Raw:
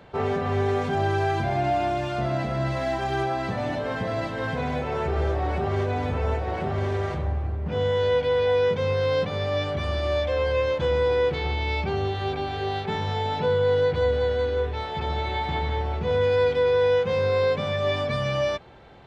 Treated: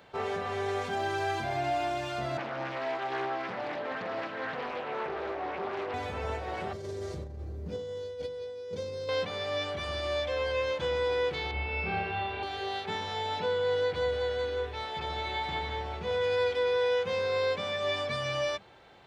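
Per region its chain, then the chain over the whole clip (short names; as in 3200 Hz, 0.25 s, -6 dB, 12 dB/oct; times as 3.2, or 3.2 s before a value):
2.37–5.94 BPF 200–2800 Hz + Doppler distortion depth 0.47 ms
6.73–9.09 band shelf 1500 Hz -14 dB 2.6 oct + negative-ratio compressor -27 dBFS, ratio -0.5
11.51–12.43 air absorption 360 m + doubler 42 ms -13 dB + flutter echo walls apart 5 m, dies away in 1.4 s
whole clip: tilt +2 dB/oct; notches 50/100/150/200/250 Hz; gain -5 dB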